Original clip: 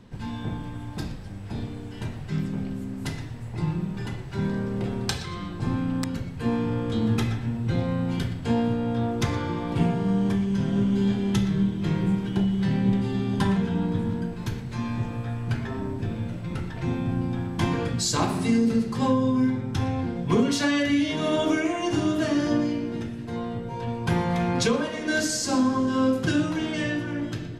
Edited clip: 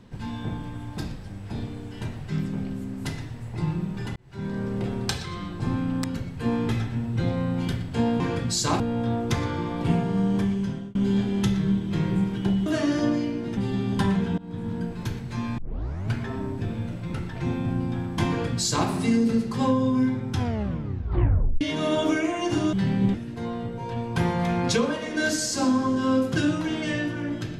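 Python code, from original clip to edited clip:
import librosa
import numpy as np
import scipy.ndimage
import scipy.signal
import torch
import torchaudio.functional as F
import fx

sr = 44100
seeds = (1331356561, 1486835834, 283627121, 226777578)

y = fx.edit(x, sr, fx.fade_in_span(start_s=4.16, length_s=0.51),
    fx.cut(start_s=6.69, length_s=0.51),
    fx.fade_out_span(start_s=10.45, length_s=0.41),
    fx.swap(start_s=12.57, length_s=0.41, other_s=22.14, other_length_s=0.91),
    fx.fade_in_from(start_s=13.79, length_s=0.46, floor_db=-22.5),
    fx.tape_start(start_s=14.99, length_s=0.54),
    fx.duplicate(start_s=17.69, length_s=0.6, to_s=8.71),
    fx.tape_stop(start_s=19.76, length_s=1.26), tone=tone)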